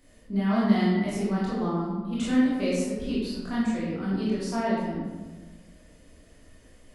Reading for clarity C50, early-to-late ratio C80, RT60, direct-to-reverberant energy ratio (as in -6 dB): -1.5 dB, 1.0 dB, 1.3 s, -9.0 dB